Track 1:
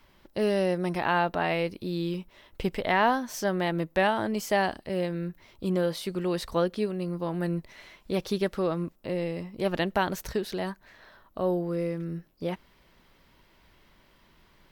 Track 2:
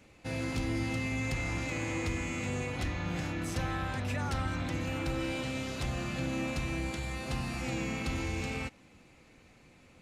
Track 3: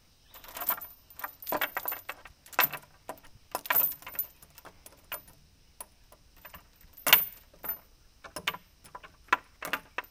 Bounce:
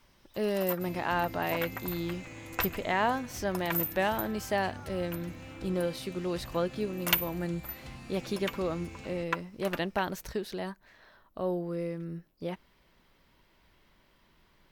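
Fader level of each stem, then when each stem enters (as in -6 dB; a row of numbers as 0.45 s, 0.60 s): -4.5 dB, -11.0 dB, -6.5 dB; 0.00 s, 0.55 s, 0.00 s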